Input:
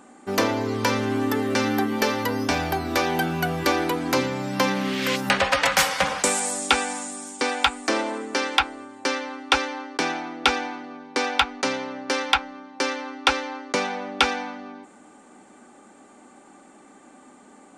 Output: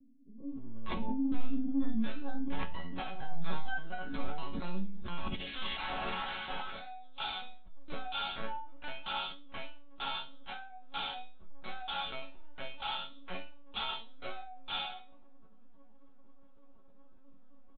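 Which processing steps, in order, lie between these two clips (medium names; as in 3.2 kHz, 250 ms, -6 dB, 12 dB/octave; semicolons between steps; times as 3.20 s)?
spectral sustain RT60 0.68 s; peak limiter -11.5 dBFS, peak gain reduction 8.5 dB; upward compressor, threshold -25 dBFS; ten-band graphic EQ 250 Hz +8 dB, 500 Hz -5 dB, 2 kHz -11 dB; spectral noise reduction 18 dB; bands offset in time lows, highs 490 ms, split 350 Hz; saturation -16 dBFS, distortion -22 dB; LPC vocoder at 8 kHz pitch kept; chord resonator F#3 minor, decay 0.3 s; decay stretcher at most 57 dB/s; trim +7.5 dB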